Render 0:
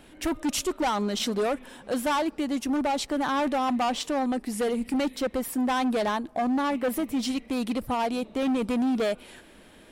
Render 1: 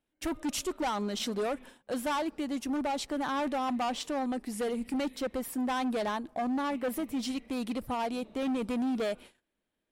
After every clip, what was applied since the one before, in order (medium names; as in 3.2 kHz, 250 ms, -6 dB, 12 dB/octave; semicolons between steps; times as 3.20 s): gate -43 dBFS, range -27 dB; trim -5.5 dB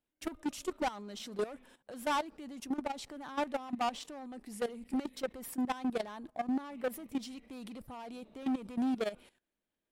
level held to a coarse grid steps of 15 dB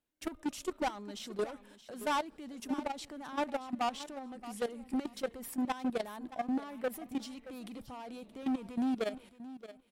feedback delay 624 ms, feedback 18%, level -15 dB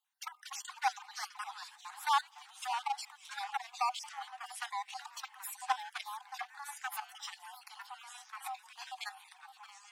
random holes in the spectrogram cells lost 39%; ever faster or slower copies 194 ms, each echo -3 st, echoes 3, each echo -6 dB; Chebyshev high-pass 750 Hz, order 10; trim +5 dB